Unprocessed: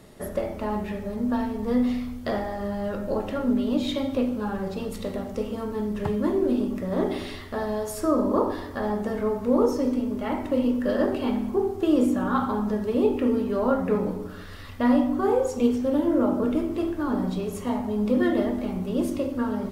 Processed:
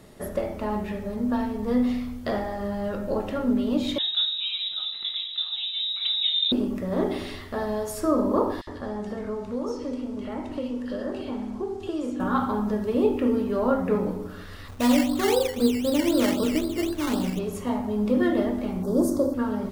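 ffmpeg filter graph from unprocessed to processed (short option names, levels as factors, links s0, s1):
-filter_complex "[0:a]asettb=1/sr,asplit=3[s0][s1][s2];[s0]atrim=end=3.984[s3];[s1]atrim=start=3.98:end=6.52,asetpts=PTS-STARTPTS,afade=t=in:d=0.004:c=qsin,afade=t=out:st=2.536:d=0.004:c=qsin,highshelf=f=2400:g=-6.5,asplit=2[s4][s5];[s5]adelay=22,volume=0.2[s6];[s4][s6]amix=inputs=2:normalize=0,atrim=end_sample=112014,lowpass=f=3400:t=q:w=0.5098,lowpass=f=3400:t=q:w=0.6013,lowpass=f=3400:t=q:w=0.9,lowpass=f=3400:t=q:w=2.563,afreqshift=-4000[s7];[s2]atrim=start=6.516[s8];[s3][s7]acrossfade=d=0.004:c1=hsin:c2=qsin[s9];[s9][s8]acrossfade=d=0.004:c1=qsin:c2=hsin,asettb=1/sr,asplit=3[s10][s11][s12];[s10]atrim=end=8.614[s13];[s11]atrim=start=8.61:end=12.2,asetpts=PTS-STARTPTS,afade=t=in:d=0.004:c=qsin,afade=t=out:st=3.586:d=0.004:c=qsin,lowpass=7500,acrossover=split=600|1500|5800[s14][s15][s16][s17];[s14]acompressor=threshold=0.0282:ratio=3[s18];[s15]acompressor=threshold=0.00631:ratio=3[s19];[s16]acompressor=threshold=0.00501:ratio=3[s20];[s17]acompressor=threshold=0.00141:ratio=3[s21];[s18][s19][s20][s21]amix=inputs=4:normalize=0,acrossover=split=2100[s22][s23];[s22]adelay=60[s24];[s24][s23]amix=inputs=2:normalize=0,atrim=end_sample=158319[s25];[s12]atrim=start=12.196[s26];[s13][s25]acrossfade=d=0.004:c1=hsin:c2=qsin[s27];[s27][s26]acrossfade=d=0.004:c1=qsin:c2=hsin,asettb=1/sr,asplit=3[s28][s29][s30];[s28]atrim=end=14.684[s31];[s29]atrim=start=14.68:end=17.39,asetpts=PTS-STARTPTS,afade=t=in:d=0.004:c=qsin,afade=t=out:st=2.706:d=0.004:c=qsin,lowpass=f=2400:w=0.5412,lowpass=f=2400:w=1.3066,acrusher=samples=14:mix=1:aa=0.000001:lfo=1:lforange=8.4:lforate=3.9[s32];[s30]atrim=start=17.386[s33];[s31][s32]acrossfade=d=0.004:c1=hsin:c2=qsin[s34];[s34][s33]acrossfade=d=0.004:c1=qsin:c2=hsin,asettb=1/sr,asplit=3[s35][s36][s37];[s35]atrim=end=18.834[s38];[s36]atrim=start=18.83:end=19.34,asetpts=PTS-STARTPTS,afade=t=in:d=0.004:c=qsin,afade=t=out:st=0.506:d=0.004:c=qsin,bass=f=250:g=-5,treble=f=4000:g=1,acontrast=34,asuperstop=centerf=2600:order=4:qfactor=0.68[s39];[s37]atrim=start=19.336[s40];[s38][s39]acrossfade=d=0.004:c1=hsin:c2=qsin[s41];[s41][s40]acrossfade=d=0.004:c1=qsin:c2=hsin"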